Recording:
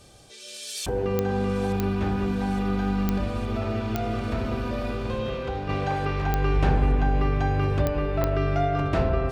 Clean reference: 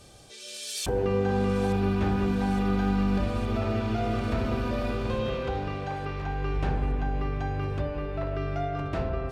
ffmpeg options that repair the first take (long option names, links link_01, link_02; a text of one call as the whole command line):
ffmpeg -i in.wav -af "adeclick=threshold=4,asetnsamples=nb_out_samples=441:pad=0,asendcmd='5.69 volume volume -6.5dB',volume=0dB" out.wav